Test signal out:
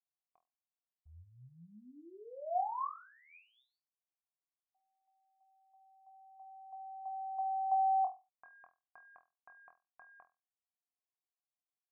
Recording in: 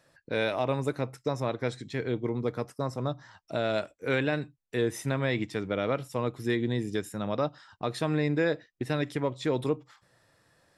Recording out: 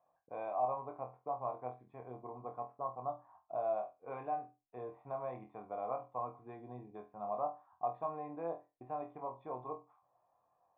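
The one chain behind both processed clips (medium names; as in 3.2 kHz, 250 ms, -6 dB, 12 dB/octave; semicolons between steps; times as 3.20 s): cascade formant filter a; on a send: flutter echo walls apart 4.1 m, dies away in 0.26 s; on the sum: trim +3.5 dB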